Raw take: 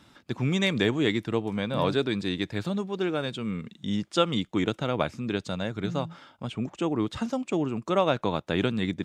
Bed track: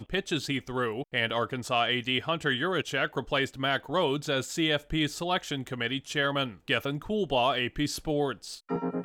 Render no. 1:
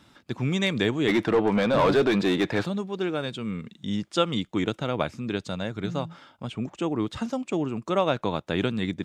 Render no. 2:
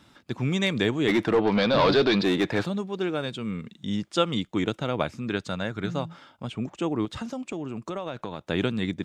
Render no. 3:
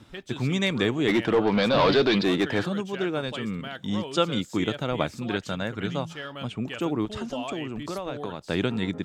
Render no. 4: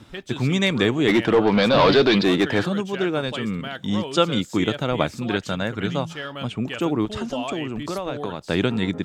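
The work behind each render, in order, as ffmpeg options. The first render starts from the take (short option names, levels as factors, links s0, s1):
-filter_complex "[0:a]asplit=3[s0][s1][s2];[s0]afade=t=out:st=1.07:d=0.02[s3];[s1]asplit=2[s4][s5];[s5]highpass=f=720:p=1,volume=20,asoftclip=type=tanh:threshold=0.299[s6];[s4][s6]amix=inputs=2:normalize=0,lowpass=f=1100:p=1,volume=0.501,afade=t=in:st=1.07:d=0.02,afade=t=out:st=2.64:d=0.02[s7];[s2]afade=t=in:st=2.64:d=0.02[s8];[s3][s7][s8]amix=inputs=3:normalize=0"
-filter_complex "[0:a]asplit=3[s0][s1][s2];[s0]afade=t=out:st=1.41:d=0.02[s3];[s1]lowpass=f=4500:t=q:w=3.2,afade=t=in:st=1.41:d=0.02,afade=t=out:st=2.22:d=0.02[s4];[s2]afade=t=in:st=2.22:d=0.02[s5];[s3][s4][s5]amix=inputs=3:normalize=0,asettb=1/sr,asplit=3[s6][s7][s8];[s6]atrim=end=5.224[s9];[s7]atrim=start=5.22:end=5.92,asetpts=PTS-STARTPTS,afade=t=in:d=0.004:c=qsin,afade=t=out:st=0.696:d=0.004:c=qsin,equalizer=f=1500:t=o:w=0.98:g=5[s10];[s8]atrim=start=5.916[s11];[s9][s10]acrossfade=d=0.004:c1=hsin:c2=qsin[s12];[s12][s11]acrossfade=d=0.004:c1=qsin:c2=hsin,asettb=1/sr,asplit=3[s13][s14][s15];[s13]atrim=end=7.054[s16];[s14]atrim=start=7.05:end=8.41,asetpts=PTS-STARTPTS,afade=t=in:d=0.004:c=qsin,afade=t=out:st=1.356:d=0.004:c=qsin,acompressor=threshold=0.0355:ratio=5:attack=3.2:release=140:knee=1:detection=peak[s17];[s15]atrim=start=8.406[s18];[s16][s17]acrossfade=d=0.004:c1=hsin:c2=qsin[s19];[s19][s18]acrossfade=d=0.004:c1=qsin:c2=hsin"
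-filter_complex "[1:a]volume=0.316[s0];[0:a][s0]amix=inputs=2:normalize=0"
-af "volume=1.68"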